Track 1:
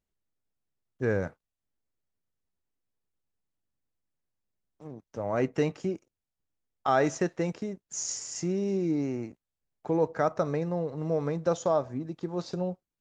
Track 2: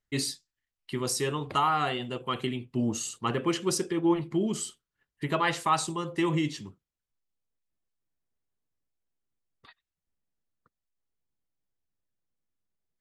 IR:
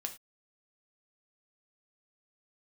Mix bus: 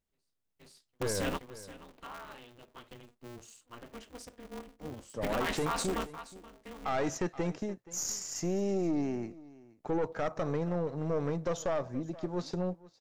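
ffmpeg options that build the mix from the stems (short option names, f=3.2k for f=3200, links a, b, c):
-filter_complex "[0:a]aeval=exprs='(tanh(14.1*val(0)+0.5)-tanh(0.5))/14.1':c=same,volume=1dB,asplit=3[a][b][c];[b]volume=-21dB[d];[1:a]dynaudnorm=f=110:g=9:m=9dB,aeval=exprs='val(0)*sgn(sin(2*PI*120*n/s))':c=same,volume=-10.5dB,asplit=2[e][f];[f]volume=-18.5dB[g];[c]apad=whole_len=573653[h];[e][h]sidechaingate=range=-46dB:threshold=-45dB:ratio=16:detection=peak[i];[d][g]amix=inputs=2:normalize=0,aecho=0:1:475:1[j];[a][i][j]amix=inputs=3:normalize=0,alimiter=limit=-23.5dB:level=0:latency=1:release=21"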